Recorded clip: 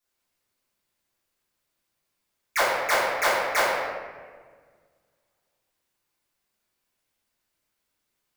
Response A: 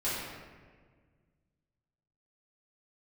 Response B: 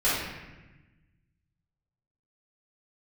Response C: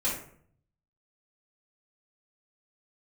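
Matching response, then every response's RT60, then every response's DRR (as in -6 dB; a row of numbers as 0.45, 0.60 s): A; 1.6, 1.1, 0.55 s; -12.0, -12.5, -9.5 dB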